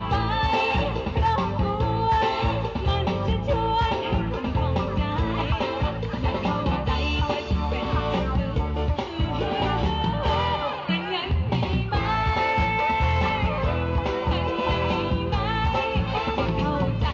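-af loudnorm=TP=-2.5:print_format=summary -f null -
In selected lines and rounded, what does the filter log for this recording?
Input Integrated:    -24.6 LUFS
Input True Peak:     -13.0 dBTP
Input LRA:             1.7 LU
Input Threshold:     -34.6 LUFS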